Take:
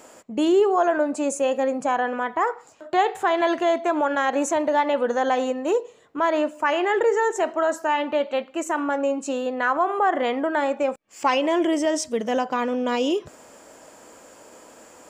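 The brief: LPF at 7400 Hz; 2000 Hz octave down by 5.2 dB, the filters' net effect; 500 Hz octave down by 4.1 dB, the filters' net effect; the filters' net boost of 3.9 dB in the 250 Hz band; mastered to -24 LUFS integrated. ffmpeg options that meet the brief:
-af "lowpass=7.4k,equalizer=f=250:t=o:g=8,equalizer=f=500:t=o:g=-7.5,equalizer=f=2k:t=o:g=-6.5,volume=0.5dB"

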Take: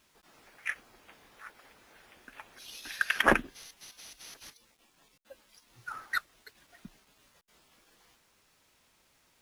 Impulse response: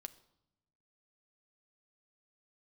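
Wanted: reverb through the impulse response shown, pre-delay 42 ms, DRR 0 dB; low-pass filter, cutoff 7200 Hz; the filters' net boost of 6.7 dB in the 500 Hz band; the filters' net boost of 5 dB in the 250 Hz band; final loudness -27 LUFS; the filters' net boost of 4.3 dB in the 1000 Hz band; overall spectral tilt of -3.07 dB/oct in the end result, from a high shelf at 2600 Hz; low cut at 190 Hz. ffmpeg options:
-filter_complex "[0:a]highpass=190,lowpass=7.2k,equalizer=f=250:t=o:g=5.5,equalizer=f=500:t=o:g=6,equalizer=f=1k:t=o:g=3,highshelf=f=2.6k:g=4.5,asplit=2[a][b];[1:a]atrim=start_sample=2205,adelay=42[c];[b][c]afir=irnorm=-1:irlink=0,volume=5dB[d];[a][d]amix=inputs=2:normalize=0,volume=-2dB"

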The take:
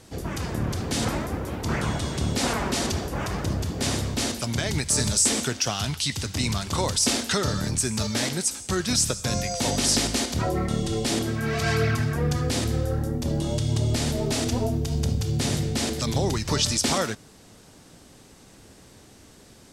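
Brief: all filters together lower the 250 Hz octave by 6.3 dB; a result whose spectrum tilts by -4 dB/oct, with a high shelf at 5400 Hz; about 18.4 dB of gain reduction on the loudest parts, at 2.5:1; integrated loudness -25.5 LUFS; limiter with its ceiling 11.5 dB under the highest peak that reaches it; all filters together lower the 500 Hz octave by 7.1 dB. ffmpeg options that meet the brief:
-af "equalizer=f=250:t=o:g=-7,equalizer=f=500:t=o:g=-7,highshelf=f=5.4k:g=5,acompressor=threshold=-45dB:ratio=2.5,volume=18dB,alimiter=limit=-16dB:level=0:latency=1"

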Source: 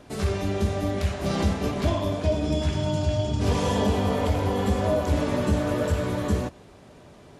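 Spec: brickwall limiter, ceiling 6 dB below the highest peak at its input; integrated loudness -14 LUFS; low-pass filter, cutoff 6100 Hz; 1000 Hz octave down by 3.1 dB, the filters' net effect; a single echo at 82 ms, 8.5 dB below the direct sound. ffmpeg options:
-af "lowpass=6.1k,equalizer=f=1k:t=o:g=-4,alimiter=limit=-18dB:level=0:latency=1,aecho=1:1:82:0.376,volume=13dB"

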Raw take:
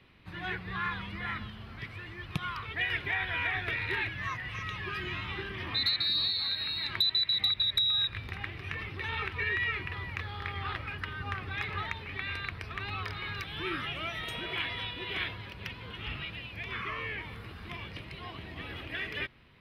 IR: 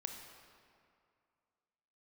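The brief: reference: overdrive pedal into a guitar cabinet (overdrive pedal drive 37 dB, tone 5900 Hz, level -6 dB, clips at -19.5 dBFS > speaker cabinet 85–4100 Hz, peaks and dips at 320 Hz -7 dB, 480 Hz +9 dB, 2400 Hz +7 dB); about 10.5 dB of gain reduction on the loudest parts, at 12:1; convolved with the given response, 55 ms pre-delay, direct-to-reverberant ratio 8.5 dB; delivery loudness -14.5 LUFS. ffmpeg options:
-filter_complex "[0:a]acompressor=threshold=-35dB:ratio=12,asplit=2[a][b];[1:a]atrim=start_sample=2205,adelay=55[c];[b][c]afir=irnorm=-1:irlink=0,volume=-7dB[d];[a][d]amix=inputs=2:normalize=0,asplit=2[e][f];[f]highpass=f=720:p=1,volume=37dB,asoftclip=type=tanh:threshold=-19.5dB[g];[e][g]amix=inputs=2:normalize=0,lowpass=f=5.9k:p=1,volume=-6dB,highpass=85,equalizer=f=320:t=q:w=4:g=-7,equalizer=f=480:t=q:w=4:g=9,equalizer=f=2.4k:t=q:w=4:g=7,lowpass=f=4.1k:w=0.5412,lowpass=f=4.1k:w=1.3066,volume=7.5dB"

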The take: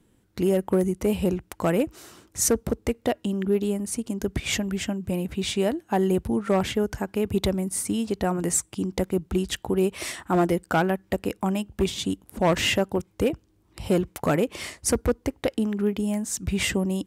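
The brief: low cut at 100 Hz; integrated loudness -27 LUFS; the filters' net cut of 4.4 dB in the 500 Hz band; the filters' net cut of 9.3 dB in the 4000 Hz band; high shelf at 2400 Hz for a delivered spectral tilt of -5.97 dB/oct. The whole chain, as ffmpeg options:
-af "highpass=100,equalizer=f=500:t=o:g=-5.5,highshelf=f=2.4k:g=-7.5,equalizer=f=4k:t=o:g=-6.5,volume=2dB"

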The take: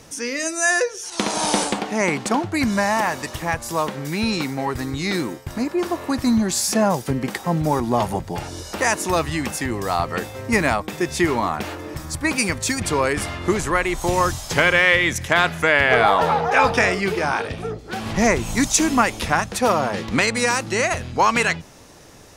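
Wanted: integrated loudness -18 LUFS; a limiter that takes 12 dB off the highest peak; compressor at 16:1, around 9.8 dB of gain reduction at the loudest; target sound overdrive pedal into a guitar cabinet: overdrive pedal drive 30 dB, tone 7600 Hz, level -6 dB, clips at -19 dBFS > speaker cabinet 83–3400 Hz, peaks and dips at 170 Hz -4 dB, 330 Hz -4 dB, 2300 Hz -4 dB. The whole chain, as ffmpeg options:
-filter_complex "[0:a]acompressor=threshold=-21dB:ratio=16,alimiter=limit=-19dB:level=0:latency=1,asplit=2[a][b];[b]highpass=f=720:p=1,volume=30dB,asoftclip=type=tanh:threshold=-19dB[c];[a][c]amix=inputs=2:normalize=0,lowpass=f=7.6k:p=1,volume=-6dB,highpass=83,equalizer=f=170:t=q:w=4:g=-4,equalizer=f=330:t=q:w=4:g=-4,equalizer=f=2.3k:t=q:w=4:g=-4,lowpass=f=3.4k:w=0.5412,lowpass=f=3.4k:w=1.3066,volume=8dB"

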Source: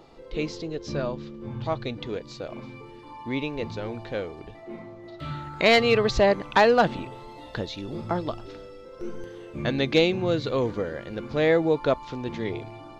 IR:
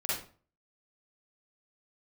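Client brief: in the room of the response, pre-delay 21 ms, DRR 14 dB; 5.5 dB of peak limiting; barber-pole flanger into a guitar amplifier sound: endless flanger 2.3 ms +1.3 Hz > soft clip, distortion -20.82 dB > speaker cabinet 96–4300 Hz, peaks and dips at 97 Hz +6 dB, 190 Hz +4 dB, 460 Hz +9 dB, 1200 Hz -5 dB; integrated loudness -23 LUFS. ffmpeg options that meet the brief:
-filter_complex "[0:a]alimiter=limit=-14.5dB:level=0:latency=1,asplit=2[a][b];[1:a]atrim=start_sample=2205,adelay=21[c];[b][c]afir=irnorm=-1:irlink=0,volume=-20dB[d];[a][d]amix=inputs=2:normalize=0,asplit=2[e][f];[f]adelay=2.3,afreqshift=1.3[g];[e][g]amix=inputs=2:normalize=1,asoftclip=threshold=-18dB,highpass=96,equalizer=f=97:t=q:w=4:g=6,equalizer=f=190:t=q:w=4:g=4,equalizer=f=460:t=q:w=4:g=9,equalizer=f=1.2k:t=q:w=4:g=-5,lowpass=f=4.3k:w=0.5412,lowpass=f=4.3k:w=1.3066,volume=6dB"

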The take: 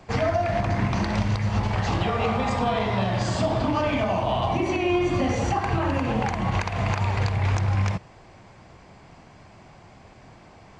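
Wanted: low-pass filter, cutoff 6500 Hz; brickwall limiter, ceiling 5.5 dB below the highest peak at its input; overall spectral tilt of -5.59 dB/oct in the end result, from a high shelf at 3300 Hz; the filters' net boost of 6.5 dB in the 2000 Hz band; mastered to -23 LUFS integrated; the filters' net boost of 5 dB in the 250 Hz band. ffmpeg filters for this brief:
-af "lowpass=6.5k,equalizer=f=250:t=o:g=6.5,equalizer=f=2k:t=o:g=9,highshelf=f=3.3k:g=-3.5,volume=0.5dB,alimiter=limit=-14dB:level=0:latency=1"

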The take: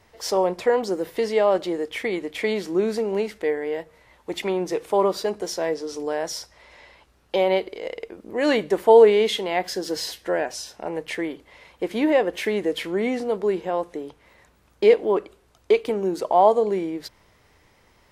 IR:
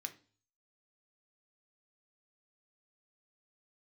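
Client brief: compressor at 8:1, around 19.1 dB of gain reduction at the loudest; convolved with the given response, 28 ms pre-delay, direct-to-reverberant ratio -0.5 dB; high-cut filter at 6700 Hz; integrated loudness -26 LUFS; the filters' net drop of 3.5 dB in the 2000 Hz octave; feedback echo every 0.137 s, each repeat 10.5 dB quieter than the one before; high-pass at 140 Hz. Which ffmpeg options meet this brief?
-filter_complex "[0:a]highpass=140,lowpass=6.7k,equalizer=f=2k:t=o:g=-4,acompressor=threshold=-29dB:ratio=8,aecho=1:1:137|274|411:0.299|0.0896|0.0269,asplit=2[a][b];[1:a]atrim=start_sample=2205,adelay=28[c];[b][c]afir=irnorm=-1:irlink=0,volume=3dB[d];[a][d]amix=inputs=2:normalize=0,volume=5.5dB"

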